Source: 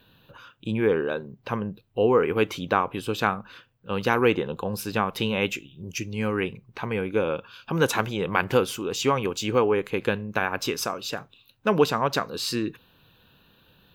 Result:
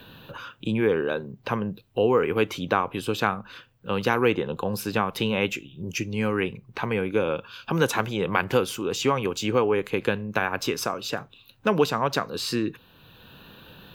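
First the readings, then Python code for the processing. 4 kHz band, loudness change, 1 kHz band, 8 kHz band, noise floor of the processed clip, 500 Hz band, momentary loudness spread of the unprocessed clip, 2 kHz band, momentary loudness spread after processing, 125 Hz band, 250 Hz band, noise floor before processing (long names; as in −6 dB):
0.0 dB, 0.0 dB, −0.5 dB, −0.5 dB, −57 dBFS, 0.0 dB, 11 LU, 0.0 dB, 10 LU, +0.5 dB, +0.5 dB, −62 dBFS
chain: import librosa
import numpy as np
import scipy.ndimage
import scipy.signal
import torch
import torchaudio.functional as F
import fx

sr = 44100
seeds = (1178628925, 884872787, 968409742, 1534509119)

y = fx.band_squash(x, sr, depth_pct=40)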